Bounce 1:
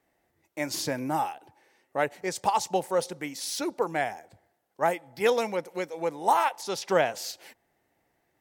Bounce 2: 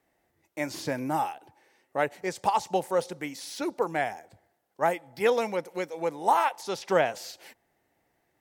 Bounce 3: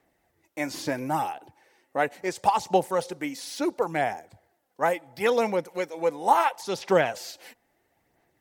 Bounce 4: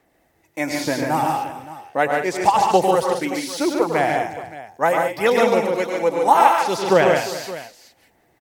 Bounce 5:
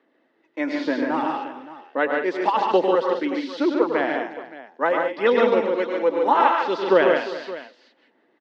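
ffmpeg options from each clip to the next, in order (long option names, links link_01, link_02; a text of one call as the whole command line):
ffmpeg -i in.wav -filter_complex "[0:a]acrossover=split=3100[link_01][link_02];[link_02]acompressor=threshold=-39dB:ratio=4:attack=1:release=60[link_03];[link_01][link_03]amix=inputs=2:normalize=0" out.wav
ffmpeg -i in.wav -af "aphaser=in_gain=1:out_gain=1:delay=4.1:decay=0.36:speed=0.73:type=sinusoidal,volume=1.5dB" out.wav
ffmpeg -i in.wav -af "aecho=1:1:102|143|195|356|405|570:0.447|0.668|0.282|0.15|0.119|0.158,volume=5.5dB" out.wav
ffmpeg -i in.wav -af "highpass=frequency=250:width=0.5412,highpass=frequency=250:width=1.3066,equalizer=frequency=250:width_type=q:width=4:gain=5,equalizer=frequency=750:width_type=q:width=4:gain=-10,equalizer=frequency=2300:width_type=q:width=4:gain=-7,lowpass=frequency=3600:width=0.5412,lowpass=frequency=3600:width=1.3066" out.wav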